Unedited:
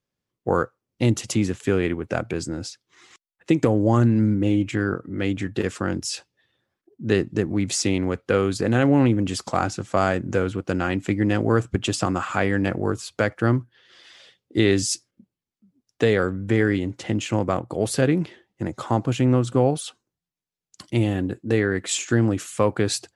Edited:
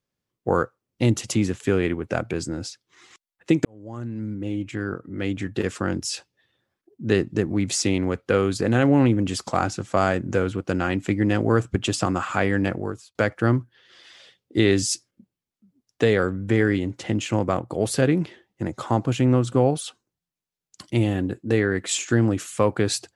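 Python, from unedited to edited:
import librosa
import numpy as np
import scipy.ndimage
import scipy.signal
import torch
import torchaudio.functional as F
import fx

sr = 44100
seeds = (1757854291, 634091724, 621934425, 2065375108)

y = fx.edit(x, sr, fx.fade_in_span(start_s=3.65, length_s=2.11),
    fx.fade_out_span(start_s=12.64, length_s=0.51), tone=tone)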